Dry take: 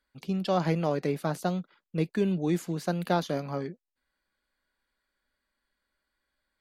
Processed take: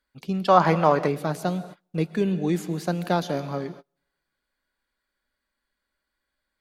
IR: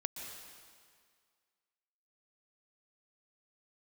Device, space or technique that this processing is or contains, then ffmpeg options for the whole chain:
keyed gated reverb: -filter_complex "[0:a]asplit=3[s0][s1][s2];[1:a]atrim=start_sample=2205[s3];[s1][s3]afir=irnorm=-1:irlink=0[s4];[s2]apad=whole_len=291112[s5];[s4][s5]sidechaingate=range=0.0224:threshold=0.00447:ratio=16:detection=peak,volume=0.473[s6];[s0][s6]amix=inputs=2:normalize=0,asettb=1/sr,asplit=3[s7][s8][s9];[s7]atrim=end=0.484[s10];[s8]atrim=start=0.48:end=1.08,asetpts=PTS-STARTPTS,afade=t=in:d=0.004:c=qsin,afade=t=out:st=0.596:d=0.004:c=qsin,equalizer=f=1100:t=o:w=1.5:g=14[s11];[s9]atrim=start=1.076[s12];[s10][s11]acrossfade=d=0.004:c1=hsin:c2=qsin[s13];[s13][s12]acrossfade=d=0.004:c1=qsin:c2=hsin"

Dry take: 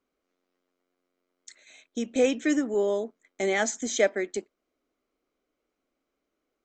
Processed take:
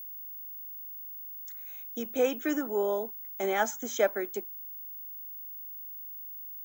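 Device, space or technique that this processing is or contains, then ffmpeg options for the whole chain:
old television with a line whistle: -af "highpass=170,equalizer=f=260:t=q:w=4:g=-4,equalizer=f=900:t=q:w=4:g=10,equalizer=f=1400:t=q:w=4:g=8,equalizer=f=2000:t=q:w=4:g=-6,equalizer=f=4300:t=q:w=4:g=-10,lowpass=f=7100:w=0.5412,lowpass=f=7100:w=1.3066,aeval=exprs='val(0)+0.0158*sin(2*PI*15625*n/s)':c=same,volume=0.668"

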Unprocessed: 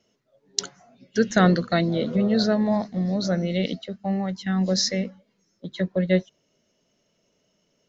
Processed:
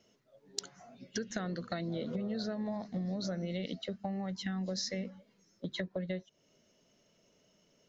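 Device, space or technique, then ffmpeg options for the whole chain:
serial compression, peaks first: -af "acompressor=threshold=0.0282:ratio=4,acompressor=threshold=0.0178:ratio=2.5"

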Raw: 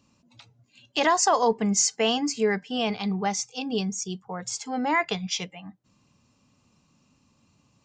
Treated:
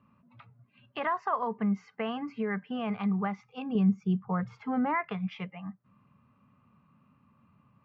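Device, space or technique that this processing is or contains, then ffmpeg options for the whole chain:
bass amplifier: -filter_complex "[0:a]acompressor=threshold=0.0355:ratio=3,highpass=74,equalizer=f=130:t=q:w=4:g=3,equalizer=f=200:t=q:w=4:g=4,equalizer=f=320:t=q:w=4:g=-9,equalizer=f=480:t=q:w=4:g=-4,equalizer=f=770:t=q:w=4:g=-4,equalizer=f=1200:t=q:w=4:g=8,lowpass=f=2200:w=0.5412,lowpass=f=2200:w=1.3066,asettb=1/sr,asplit=3[s0][s1][s2];[s0]atrim=end=3.754[s3];[s1]atrim=start=3.75:end=5.01,asetpts=PTS-STARTPTS,afade=t=in:d=0.004:c=qsin,afade=t=out:st=1.256:d=0.004:c=qsin,lowshelf=f=380:g=8.5[s4];[s2]atrim=start=5.006[s5];[s3][s4]acrossfade=d=0.004:c1=hsin:c2=qsin[s6];[s6][s5]acrossfade=d=0.004:c1=qsin:c2=hsin"

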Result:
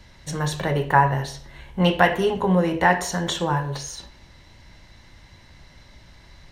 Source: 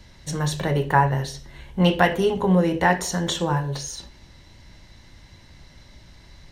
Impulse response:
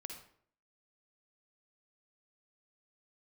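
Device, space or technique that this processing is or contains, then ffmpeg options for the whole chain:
filtered reverb send: -filter_complex "[0:a]asplit=2[s0][s1];[s1]highpass=460,lowpass=3500[s2];[1:a]atrim=start_sample=2205[s3];[s2][s3]afir=irnorm=-1:irlink=0,volume=0.75[s4];[s0][s4]amix=inputs=2:normalize=0,volume=0.891"

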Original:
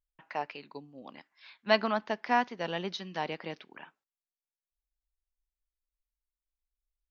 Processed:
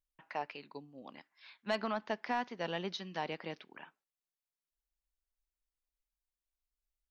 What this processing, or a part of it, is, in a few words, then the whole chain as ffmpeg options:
soft clipper into limiter: -af "asoftclip=type=tanh:threshold=0.188,alimiter=limit=0.0841:level=0:latency=1:release=123,volume=0.708"

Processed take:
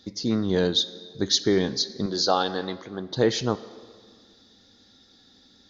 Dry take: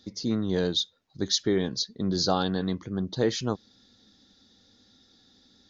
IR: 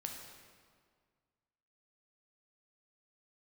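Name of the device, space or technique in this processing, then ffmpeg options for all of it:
filtered reverb send: -filter_complex "[0:a]asettb=1/sr,asplit=3[s0][s1][s2];[s0]atrim=end=2.064[s3];[s1]atrim=start=2.06:end=3.11,asetpts=PTS-STARTPTS,afade=t=in:d=0.004:c=qsin,afade=t=out:st=1.046:d=0.004:c=qsin,bass=f=250:g=-14,treble=f=4000:g=-1[s4];[s2]atrim=start=3.106[s5];[s3][s4]acrossfade=d=0.004:c1=hsin:c2=qsin[s6];[s6][s5]acrossfade=d=0.004:c1=qsin:c2=hsin,asplit=2[s7][s8];[s8]highpass=260,lowpass=6000[s9];[1:a]atrim=start_sample=2205[s10];[s9][s10]afir=irnorm=-1:irlink=0,volume=0.447[s11];[s7][s11]amix=inputs=2:normalize=0,volume=1.33"

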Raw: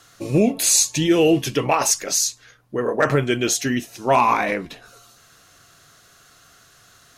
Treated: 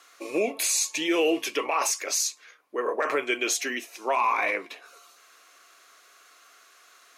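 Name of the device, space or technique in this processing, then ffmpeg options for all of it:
laptop speaker: -af "highpass=f=340:w=0.5412,highpass=f=340:w=1.3066,equalizer=f=1100:t=o:w=0.33:g=7,equalizer=f=2300:t=o:w=0.39:g=9,alimiter=limit=0.299:level=0:latency=1:release=29,volume=0.562"

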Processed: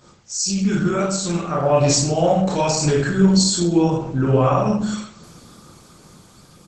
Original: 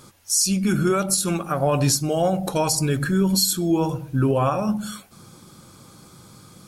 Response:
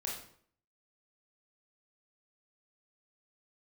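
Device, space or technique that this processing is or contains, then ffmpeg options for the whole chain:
speakerphone in a meeting room: -filter_complex "[1:a]atrim=start_sample=2205[s0];[0:a][s0]afir=irnorm=-1:irlink=0,asplit=2[s1][s2];[s2]adelay=170,highpass=300,lowpass=3400,asoftclip=type=hard:threshold=0.188,volume=0.0631[s3];[s1][s3]amix=inputs=2:normalize=0,dynaudnorm=f=370:g=9:m=1.78" -ar 48000 -c:a libopus -b:a 12k

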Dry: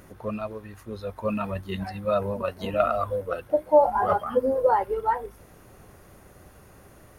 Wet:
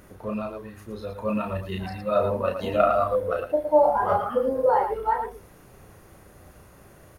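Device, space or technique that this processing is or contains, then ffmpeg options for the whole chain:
slapback doubling: -filter_complex "[0:a]asplit=3[s0][s1][s2];[s1]adelay=33,volume=0.631[s3];[s2]adelay=113,volume=0.447[s4];[s0][s3][s4]amix=inputs=3:normalize=0,asettb=1/sr,asplit=3[s5][s6][s7];[s5]atrim=end=2.154[s8];[s6]atrim=start=2.15:end=3.46,asetpts=PTS-STARTPTS,afade=t=in:d=0.004:c=qsin,afade=t=out:st=1.306:d=0.004:c=qsin,equalizer=f=530:w=0.33:g=3.5[s9];[s7]atrim=start=3.456[s10];[s8][s9]acrossfade=d=0.004:c1=hsin:c2=qsin[s11];[s11][s10]acrossfade=d=0.004:c1=qsin:c2=hsin,volume=0.841"

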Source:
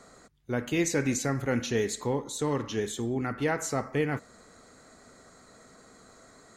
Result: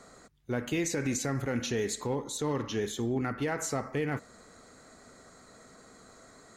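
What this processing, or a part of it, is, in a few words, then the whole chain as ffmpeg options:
limiter into clipper: -filter_complex "[0:a]alimiter=limit=0.0794:level=0:latency=1:release=61,asoftclip=type=hard:threshold=0.0708,asettb=1/sr,asplit=3[s0][s1][s2];[s0]atrim=end=2.374[s3];[s1]atrim=start=2.37:end=3.43,asetpts=PTS-STARTPTS,afade=t=in:d=0.004:c=qsin,afade=t=out:st=1.056:d=0.004:c=qsin,equalizer=f=8100:w=7.3:g=-14[s4];[s2]atrim=start=3.426[s5];[s3][s4]acrossfade=d=0.004:c1=hsin:c2=qsin[s6];[s6][s5]acrossfade=d=0.004:c1=qsin:c2=hsin"

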